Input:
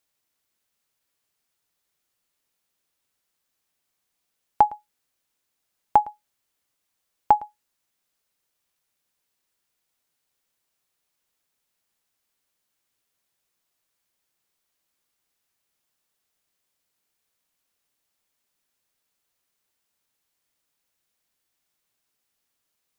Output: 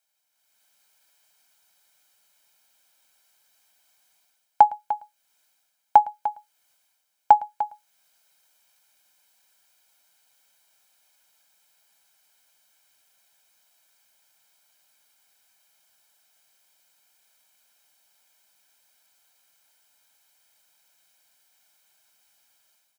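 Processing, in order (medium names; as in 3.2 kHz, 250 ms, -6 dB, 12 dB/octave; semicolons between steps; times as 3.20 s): high-pass 230 Hz 6 dB/octave; bass shelf 320 Hz -8 dB; comb 1.3 ms, depth 66%; level rider gain up to 12 dB; delay 299 ms -13 dB; trim -1 dB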